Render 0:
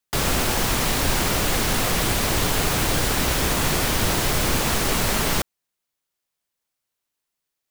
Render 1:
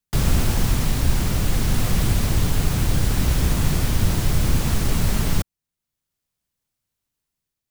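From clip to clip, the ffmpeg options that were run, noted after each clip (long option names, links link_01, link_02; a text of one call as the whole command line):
ffmpeg -i in.wav -af "bass=frequency=250:gain=15,treble=frequency=4000:gain=2,dynaudnorm=framelen=180:gausssize=5:maxgain=3.5dB,volume=-5.5dB" out.wav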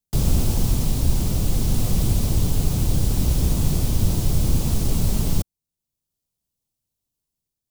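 ffmpeg -i in.wav -af "equalizer=frequency=1700:width=0.91:gain=-13" out.wav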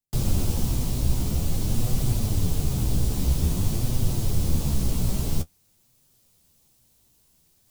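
ffmpeg -i in.wav -af "areverse,acompressor=mode=upward:threshold=-38dB:ratio=2.5,areverse,flanger=delay=7.7:depth=8.6:regen=35:speed=0.5:shape=sinusoidal" out.wav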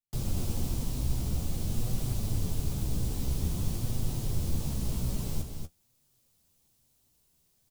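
ffmpeg -i in.wav -af "aecho=1:1:238:0.501,volume=-8dB" out.wav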